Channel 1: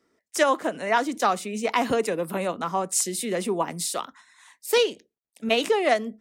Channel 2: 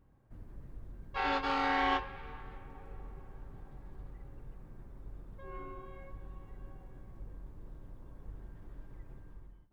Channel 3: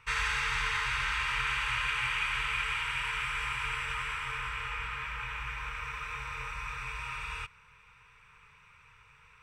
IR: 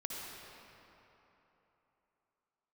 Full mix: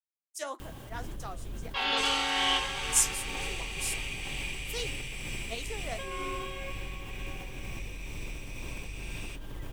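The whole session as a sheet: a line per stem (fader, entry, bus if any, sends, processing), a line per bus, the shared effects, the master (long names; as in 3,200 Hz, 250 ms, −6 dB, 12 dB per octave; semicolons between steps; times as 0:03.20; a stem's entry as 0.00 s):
−15.0 dB, 0.00 s, no send, flanger 1.8 Hz, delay 8.1 ms, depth 7.5 ms, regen +59%; multiband upward and downward expander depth 100%
−2.0 dB, 0.60 s, no send, parametric band 3,100 Hz +14.5 dB 0.59 octaves; envelope flattener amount 70%
−4.5 dB, 1.90 s, no send, inverse Chebyshev band-stop filter 460–1,200 Hz, stop band 50 dB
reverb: not used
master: bass and treble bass −3 dB, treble +12 dB; shaped tremolo triangle 2.1 Hz, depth 35%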